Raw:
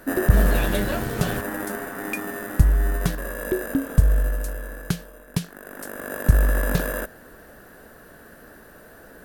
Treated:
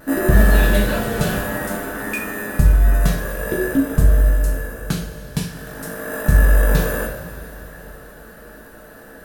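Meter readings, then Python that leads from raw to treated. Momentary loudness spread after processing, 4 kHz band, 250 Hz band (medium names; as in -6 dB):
17 LU, +5.0 dB, +5.0 dB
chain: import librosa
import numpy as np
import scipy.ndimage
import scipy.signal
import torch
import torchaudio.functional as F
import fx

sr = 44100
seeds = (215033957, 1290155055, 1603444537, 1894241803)

y = fx.vibrato(x, sr, rate_hz=0.55, depth_cents=15.0)
y = fx.rev_double_slope(y, sr, seeds[0], early_s=0.47, late_s=4.0, knee_db=-17, drr_db=-3.0)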